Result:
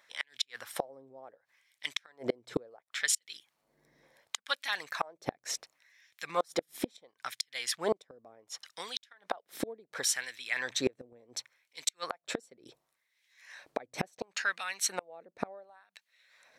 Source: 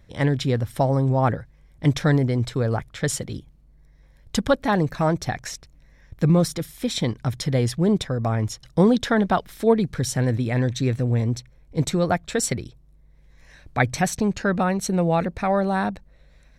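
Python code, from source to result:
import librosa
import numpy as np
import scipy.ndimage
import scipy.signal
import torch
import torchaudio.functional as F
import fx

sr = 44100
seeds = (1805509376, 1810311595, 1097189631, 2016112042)

y = fx.filter_lfo_highpass(x, sr, shape='sine', hz=0.7, low_hz=300.0, high_hz=2700.0, q=1.2)
y = fx.dynamic_eq(y, sr, hz=540.0, q=1.0, threshold_db=-35.0, ratio=4.0, max_db=8)
y = fx.gate_flip(y, sr, shuts_db=-16.0, range_db=-35)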